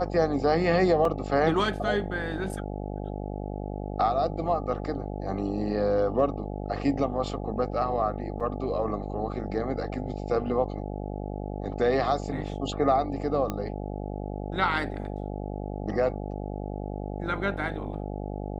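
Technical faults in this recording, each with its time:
buzz 50 Hz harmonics 17 -34 dBFS
1.05 gap 2.4 ms
8.4–8.41 gap 5.2 ms
13.5 pop -16 dBFS

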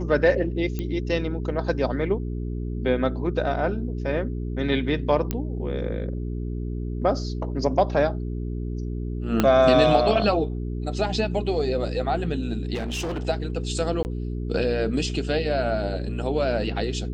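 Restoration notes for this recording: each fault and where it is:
hum 60 Hz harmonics 7 -29 dBFS
0.79 pop -16 dBFS
5.31 pop -11 dBFS
9.4 pop -6 dBFS
12.75–13.27 clipped -25 dBFS
14.03–14.05 gap 19 ms

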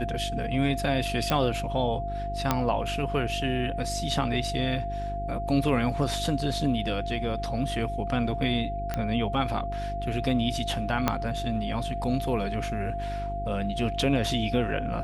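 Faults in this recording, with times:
hum 50 Hz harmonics 8 -34 dBFS
tone 690 Hz -32 dBFS
1.3 pop -11 dBFS
2.51 pop -8 dBFS
8.94 pop -15 dBFS
11.08 pop -8 dBFS

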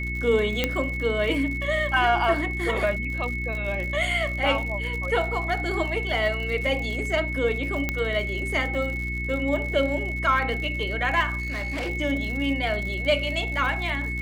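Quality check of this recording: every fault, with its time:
crackle 81/s -32 dBFS
hum 60 Hz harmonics 6 -31 dBFS
tone 2200 Hz -30 dBFS
0.64 pop -8 dBFS
7.89 pop -11 dBFS
11.4–11.9 clipped -25.5 dBFS

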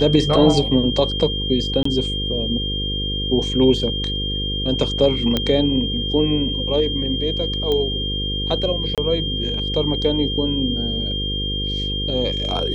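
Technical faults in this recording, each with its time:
buzz 50 Hz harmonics 10 -26 dBFS
tone 3200 Hz -24 dBFS
1.83–1.85 gap 24 ms
5.37 pop -6 dBFS
7.72 pop -11 dBFS
8.95–8.98 gap 27 ms

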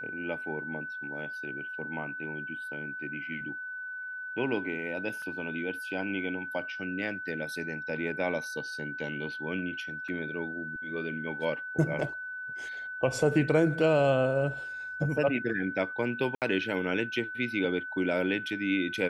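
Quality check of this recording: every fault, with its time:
tone 1500 Hz -36 dBFS
5.22 gap 2.7 ms
10.08–10.09 gap 5.1 ms
16.35–16.42 gap 68 ms

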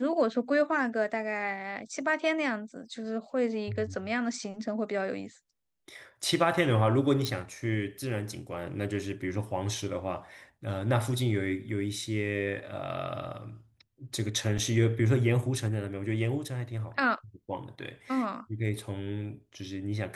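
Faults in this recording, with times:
7.25 pop
14.58–14.59 gap 5.2 ms

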